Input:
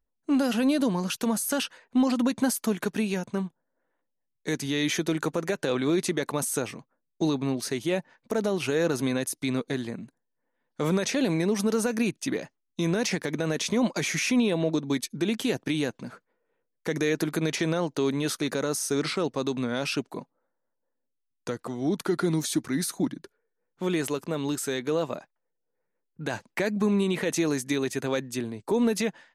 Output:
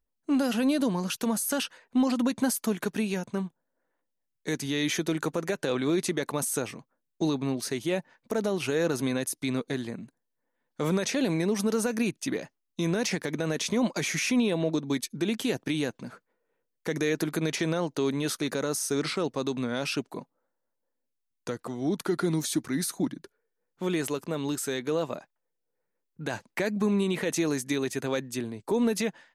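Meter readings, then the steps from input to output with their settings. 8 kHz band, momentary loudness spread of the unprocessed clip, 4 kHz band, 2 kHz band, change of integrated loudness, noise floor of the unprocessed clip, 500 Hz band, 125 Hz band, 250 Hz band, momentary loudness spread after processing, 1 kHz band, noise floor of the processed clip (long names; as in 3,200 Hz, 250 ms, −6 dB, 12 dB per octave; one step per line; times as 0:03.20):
−0.5 dB, 9 LU, −1.5 dB, −1.5 dB, −1.5 dB, −80 dBFS, −1.5 dB, −1.5 dB, −1.5 dB, 9 LU, −1.5 dB, −81 dBFS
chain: high-shelf EQ 11,000 Hz +3 dB
level −1.5 dB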